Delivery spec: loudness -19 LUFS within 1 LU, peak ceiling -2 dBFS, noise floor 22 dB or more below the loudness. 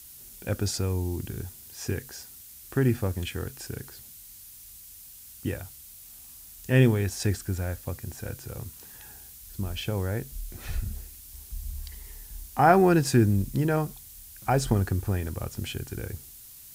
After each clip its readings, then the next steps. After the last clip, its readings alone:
noise floor -48 dBFS; noise floor target -50 dBFS; loudness -28.0 LUFS; peak -6.0 dBFS; loudness target -19.0 LUFS
-> denoiser 6 dB, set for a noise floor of -48 dBFS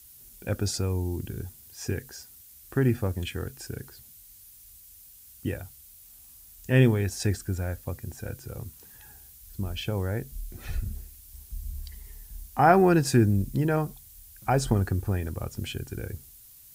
noise floor -51 dBFS; loudness -27.5 LUFS; peak -6.0 dBFS; loudness target -19.0 LUFS
-> gain +8.5 dB; limiter -2 dBFS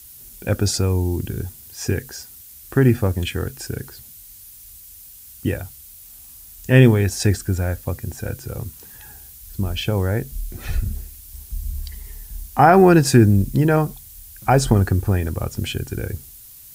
loudness -19.5 LUFS; peak -2.0 dBFS; noise floor -43 dBFS

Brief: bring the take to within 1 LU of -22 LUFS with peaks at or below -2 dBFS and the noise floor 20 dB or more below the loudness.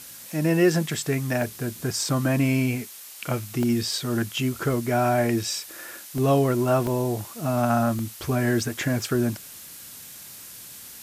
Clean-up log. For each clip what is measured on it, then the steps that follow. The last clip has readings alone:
dropouts 5; longest dropout 1.3 ms; noise floor -43 dBFS; noise floor target -45 dBFS; loudness -24.5 LUFS; peak -9.0 dBFS; loudness target -22.0 LUFS
-> interpolate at 1.42/3.63/6.18/6.87/7.99, 1.3 ms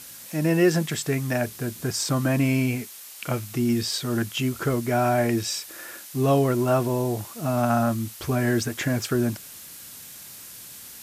dropouts 0; noise floor -43 dBFS; noise floor target -45 dBFS
-> denoiser 6 dB, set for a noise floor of -43 dBFS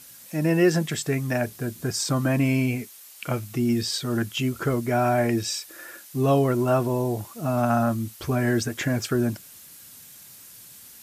noise floor -47 dBFS; loudness -24.5 LUFS; peak -9.0 dBFS; loudness target -22.0 LUFS
-> gain +2.5 dB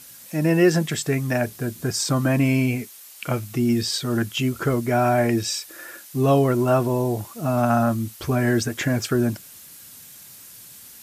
loudness -22.0 LUFS; peak -6.5 dBFS; noise floor -44 dBFS

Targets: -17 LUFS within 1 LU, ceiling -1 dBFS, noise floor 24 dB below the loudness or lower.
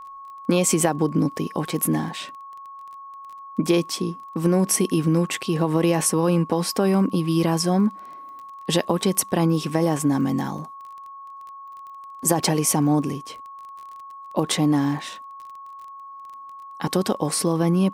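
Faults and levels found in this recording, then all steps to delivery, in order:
ticks 22/s; steady tone 1100 Hz; tone level -37 dBFS; loudness -22.0 LUFS; peak -5.0 dBFS; loudness target -17.0 LUFS
-> de-click; notch 1100 Hz, Q 30; gain +5 dB; limiter -1 dBFS

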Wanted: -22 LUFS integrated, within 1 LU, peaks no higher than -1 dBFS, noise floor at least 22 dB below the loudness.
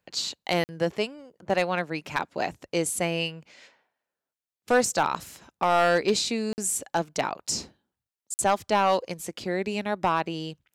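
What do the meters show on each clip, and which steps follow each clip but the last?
clipped 0.4%; flat tops at -14.0 dBFS; dropouts 3; longest dropout 49 ms; loudness -27.0 LUFS; peak -14.0 dBFS; loudness target -22.0 LUFS
-> clip repair -14 dBFS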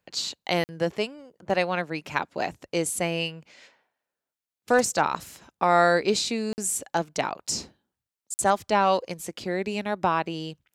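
clipped 0.0%; dropouts 3; longest dropout 49 ms
-> interpolate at 0.64/6.53/8.34, 49 ms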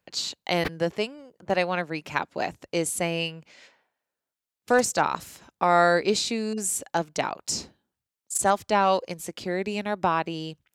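dropouts 0; loudness -26.0 LUFS; peak -6.0 dBFS; loudness target -22.0 LUFS
-> gain +4 dB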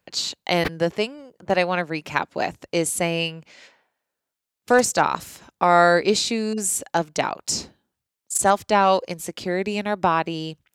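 loudness -22.0 LUFS; peak -2.0 dBFS; noise floor -84 dBFS

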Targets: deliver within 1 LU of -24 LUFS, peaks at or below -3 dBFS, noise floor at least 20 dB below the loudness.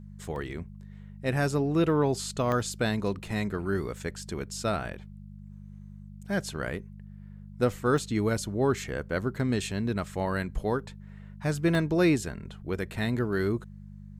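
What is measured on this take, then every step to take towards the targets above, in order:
dropouts 4; longest dropout 1.3 ms; hum 50 Hz; harmonics up to 200 Hz; hum level -41 dBFS; loudness -29.5 LUFS; peak -12.5 dBFS; loudness target -24.0 LUFS
-> interpolate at 0.36/2.52/7.98/11.75, 1.3 ms; de-hum 50 Hz, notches 4; gain +5.5 dB

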